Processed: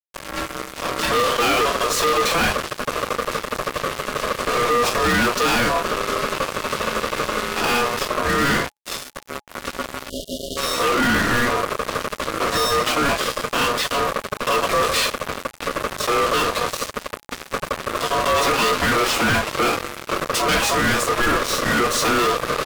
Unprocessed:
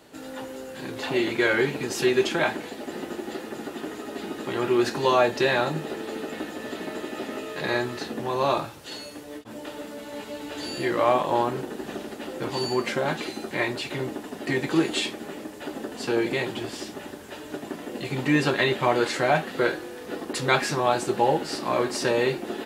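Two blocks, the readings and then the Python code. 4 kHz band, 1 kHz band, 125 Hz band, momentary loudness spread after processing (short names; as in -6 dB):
+9.5 dB, +8.0 dB, +3.5 dB, 11 LU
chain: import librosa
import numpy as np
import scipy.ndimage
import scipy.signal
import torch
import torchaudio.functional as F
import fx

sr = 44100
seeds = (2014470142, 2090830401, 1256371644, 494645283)

y = fx.fuzz(x, sr, gain_db=35.0, gate_db=-35.0)
y = y * np.sin(2.0 * np.pi * 840.0 * np.arange(len(y)) / sr)
y = fx.spec_erase(y, sr, start_s=10.09, length_s=0.48, low_hz=700.0, high_hz=2800.0)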